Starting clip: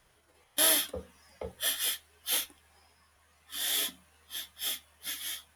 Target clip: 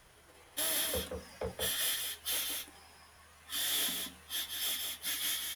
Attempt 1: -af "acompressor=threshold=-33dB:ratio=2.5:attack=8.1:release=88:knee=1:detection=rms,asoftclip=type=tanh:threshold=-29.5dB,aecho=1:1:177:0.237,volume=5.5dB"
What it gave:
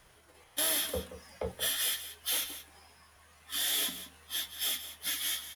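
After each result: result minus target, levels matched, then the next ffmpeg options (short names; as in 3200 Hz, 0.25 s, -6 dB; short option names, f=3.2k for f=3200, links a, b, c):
echo-to-direct -8.5 dB; soft clip: distortion -6 dB
-af "acompressor=threshold=-33dB:ratio=2.5:attack=8.1:release=88:knee=1:detection=rms,asoftclip=type=tanh:threshold=-29.5dB,aecho=1:1:177:0.631,volume=5.5dB"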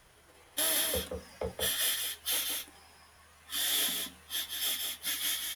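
soft clip: distortion -6 dB
-af "acompressor=threshold=-33dB:ratio=2.5:attack=8.1:release=88:knee=1:detection=rms,asoftclip=type=tanh:threshold=-36dB,aecho=1:1:177:0.631,volume=5.5dB"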